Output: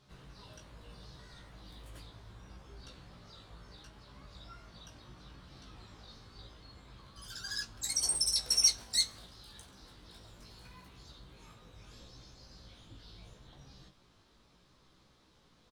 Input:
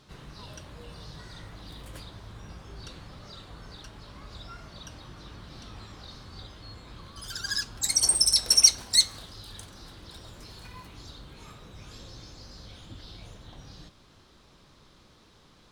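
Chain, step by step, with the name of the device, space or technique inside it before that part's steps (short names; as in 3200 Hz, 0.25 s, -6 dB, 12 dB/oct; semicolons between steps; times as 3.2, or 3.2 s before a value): double-tracked vocal (doubler 22 ms -13 dB; chorus 0.73 Hz, delay 15 ms, depth 2.9 ms); gain -5.5 dB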